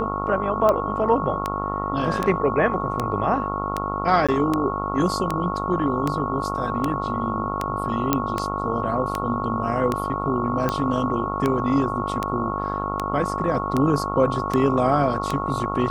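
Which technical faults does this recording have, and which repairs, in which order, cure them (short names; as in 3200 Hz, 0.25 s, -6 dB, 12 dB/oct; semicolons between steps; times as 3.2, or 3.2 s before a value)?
buzz 50 Hz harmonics 28 -29 dBFS
tick 78 rpm -9 dBFS
tone 1100 Hz -28 dBFS
4.27–4.29 gap 16 ms
8.13 pop -4 dBFS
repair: de-click; de-hum 50 Hz, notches 28; notch 1100 Hz, Q 30; interpolate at 4.27, 16 ms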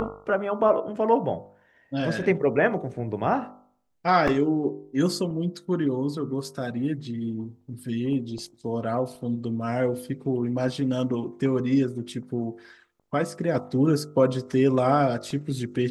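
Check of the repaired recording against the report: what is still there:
none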